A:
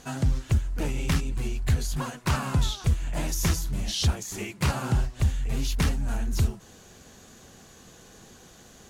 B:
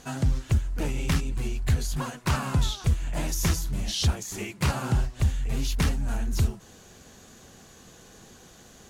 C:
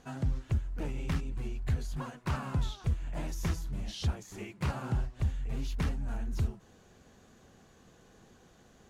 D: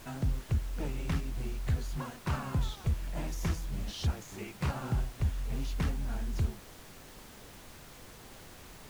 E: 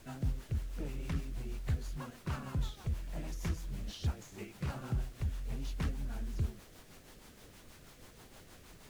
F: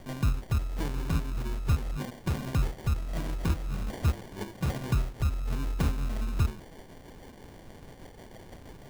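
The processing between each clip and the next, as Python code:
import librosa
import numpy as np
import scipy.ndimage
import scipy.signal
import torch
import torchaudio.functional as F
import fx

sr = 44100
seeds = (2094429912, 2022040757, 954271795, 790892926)

y1 = x
y2 = fx.high_shelf(y1, sr, hz=3500.0, db=-11.0)
y2 = F.gain(torch.from_numpy(y2), -7.0).numpy()
y3 = fx.dmg_noise_colour(y2, sr, seeds[0], colour='pink', level_db=-51.0)
y4 = fx.rotary(y3, sr, hz=6.3)
y4 = F.gain(torch.from_numpy(y4), -3.0).numpy()
y5 = fx.sample_hold(y4, sr, seeds[1], rate_hz=1300.0, jitter_pct=0)
y5 = F.gain(torch.from_numpy(y5), 8.0).numpy()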